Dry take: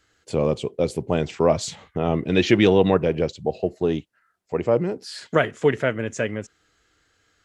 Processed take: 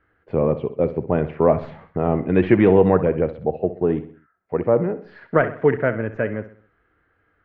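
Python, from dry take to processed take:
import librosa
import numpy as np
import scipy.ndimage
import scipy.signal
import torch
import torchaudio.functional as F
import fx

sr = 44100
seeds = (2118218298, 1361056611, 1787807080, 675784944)

p1 = fx.tracing_dist(x, sr, depth_ms=0.027)
p2 = scipy.signal.sosfilt(scipy.signal.butter(4, 1900.0, 'lowpass', fs=sr, output='sos'), p1)
p3 = p2 + fx.echo_feedback(p2, sr, ms=64, feedback_pct=45, wet_db=-13.5, dry=0)
y = p3 * librosa.db_to_amplitude(2.0)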